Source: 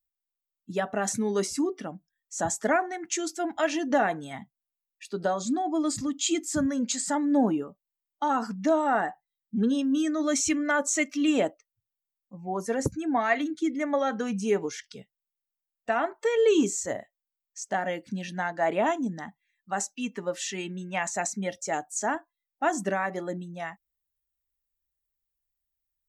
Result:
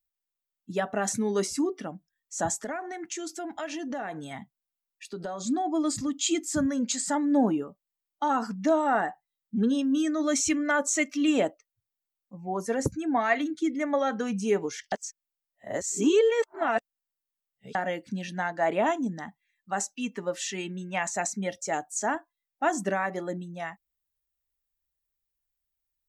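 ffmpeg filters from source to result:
-filter_complex "[0:a]asettb=1/sr,asplit=3[s0][s1][s2];[s0]atrim=end=2.564[s3];[s1]atrim=start=2.56:end=5.44,asetpts=PTS-STARTPTS,afade=t=in:d=0.004:c=qsin,afade=t=out:st=2.876:d=0.004:c=qsin,acompressor=threshold=0.0251:ratio=4:attack=3.2:release=140:knee=1:detection=peak[s4];[s2]atrim=start=5.436[s5];[s3][s4]acrossfade=d=0.004:c1=hsin:c2=qsin[s6];[s6][s5]acrossfade=d=0.004:c1=qsin:c2=hsin,asplit=3[s7][s8][s9];[s7]atrim=end=14.922[s10];[s8]atrim=start=14.918:end=17.752,asetpts=PTS-STARTPTS,areverse[s11];[s9]atrim=start=17.748[s12];[s10][s11]acrossfade=d=0.004:c1=hsin:c2=hsin[s13];[s13][s12]acrossfade=d=0.004:c1=hsin:c2=hsin"

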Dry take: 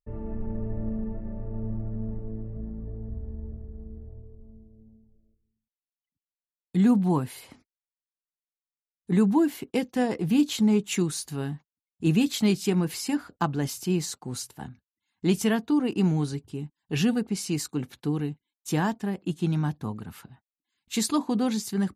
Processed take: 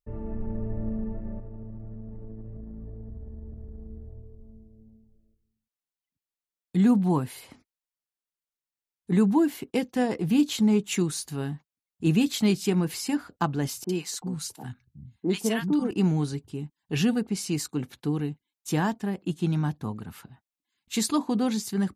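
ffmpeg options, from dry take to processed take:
-filter_complex "[0:a]asettb=1/sr,asplit=3[s0][s1][s2];[s0]atrim=end=1.384[s3];[s1]atrim=start=1.38:end=3.91,asetpts=PTS-STARTPTS,afade=t=in:d=0.004:c=qsin,afade=t=out:st=2.526:d=0.004:c=qsin,acompressor=threshold=0.0178:ratio=10:attack=3.2:release=140:knee=1:detection=peak[s4];[s2]atrim=start=3.906[s5];[s3][s4]acrossfade=d=0.004:c1=hsin:c2=qsin[s6];[s6][s5]acrossfade=d=0.004:c1=qsin:c2=hsin,asettb=1/sr,asplit=3[s7][s8][s9];[s7]atrim=end=13.844[s10];[s8]atrim=start=13.84:end=15.91,asetpts=PTS-STARTPTS,afade=t=in:d=0.004:c=qsin,afade=t=out:st=2.066:d=0.004:c=qsin,acrossover=split=180|990[s11][s12][s13];[s13]adelay=50[s14];[s11]adelay=370[s15];[s15][s12][s14]amix=inputs=3:normalize=0,atrim=end_sample=91287[s16];[s9]atrim=start=15.906[s17];[s10][s16]acrossfade=d=0.004:c1=hsin:c2=qsin[s18];[s18][s17]acrossfade=d=0.004:c1=qsin:c2=hsin"

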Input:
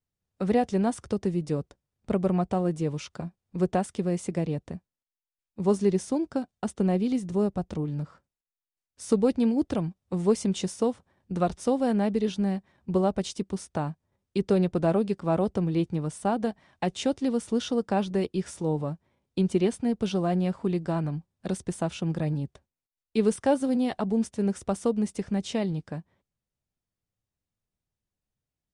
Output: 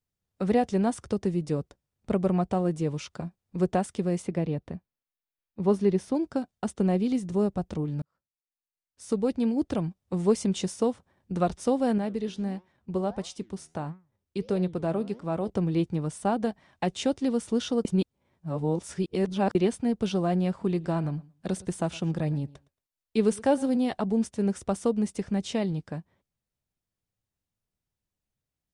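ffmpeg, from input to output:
-filter_complex "[0:a]asettb=1/sr,asplit=3[s0][s1][s2];[s0]atrim=end=4.224[s3];[s1]atrim=start=4.22:end=6.15,asetpts=PTS-STARTPTS,afade=t=in:d=0.004:c=qsin,afade=t=out:st=1.926:d=0.004:c=qsin,equalizer=f=7500:t=o:w=0.96:g=-11.5[s4];[s2]atrim=start=6.146[s5];[s3][s4]acrossfade=d=0.004:c1=hsin:c2=qsin[s6];[s6][s5]acrossfade=d=0.004:c1=qsin:c2=hsin,asettb=1/sr,asplit=3[s7][s8][s9];[s7]atrim=end=11.984[s10];[s8]atrim=start=11.98:end=15.5,asetpts=PTS-STARTPTS,afade=t=in:d=0.004:c=qsin,afade=t=out:st=3.516:d=0.004:c=qsin,flanger=delay=5.3:depth=7.9:regen=88:speed=1.5:shape=sinusoidal[s11];[s9]atrim=start=15.496[s12];[s10][s11]acrossfade=d=0.004:c1=hsin:c2=qsin[s13];[s13][s12]acrossfade=d=0.004:c1=qsin:c2=hsin,asettb=1/sr,asplit=3[s14][s15][s16];[s14]atrim=end=20.504[s17];[s15]atrim=start=20.5:end=23.68,asetpts=PTS-STARTPTS,afade=t=in:d=0.004:c=qsin,afade=t=out:st=3.176:d=0.004:c=qsin,aecho=1:1:113|226:0.0841|0.0135,atrim=end_sample=140238[s18];[s16]atrim=start=23.676[s19];[s17][s18]acrossfade=d=0.004:c1=hsin:c2=qsin[s20];[s20][s19]acrossfade=d=0.004:c1=qsin:c2=hsin,asplit=4[s21][s22][s23][s24];[s21]atrim=end=8.02,asetpts=PTS-STARTPTS,afade=t=out:st=8.016:d=0.004:c=hsin[s25];[s22]atrim=start=8.02:end=17.852,asetpts=PTS-STARTPTS,afade=t=in:d=1.86[s26];[s23]atrim=start=17.848:end=19.552,asetpts=PTS-STARTPTS,areverse[s27];[s24]atrim=start=19.548[s28];[s25][s26]concat=n=2:v=0:a=1[s29];[s29][s27]acrossfade=d=0.004:c1=hsin:c2=hsin[s30];[s30][s28]acrossfade=d=0.004:c1=hsin:c2=hsin"

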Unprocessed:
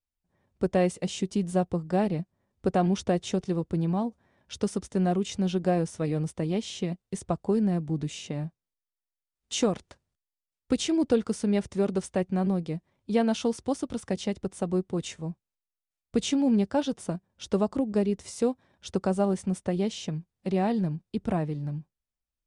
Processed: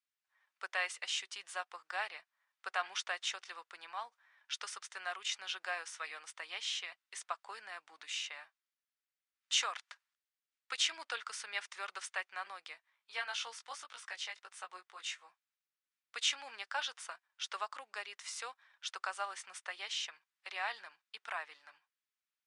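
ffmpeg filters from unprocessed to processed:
-filter_complex "[0:a]asplit=3[s0][s1][s2];[s0]afade=t=out:st=12.74:d=0.02[s3];[s1]flanger=delay=16:depth=2.7:speed=1.5,afade=t=in:st=12.74:d=0.02,afade=t=out:st=15.28:d=0.02[s4];[s2]afade=t=in:st=15.28:d=0.02[s5];[s3][s4][s5]amix=inputs=3:normalize=0,highpass=f=1300:w=0.5412,highpass=f=1300:w=1.3066,aemphasis=mode=reproduction:type=75kf,volume=2.37"

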